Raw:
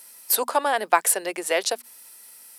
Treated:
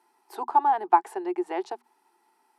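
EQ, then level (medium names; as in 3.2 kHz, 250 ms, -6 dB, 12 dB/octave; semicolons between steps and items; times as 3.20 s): two resonant band-passes 550 Hz, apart 1.2 oct; +6.0 dB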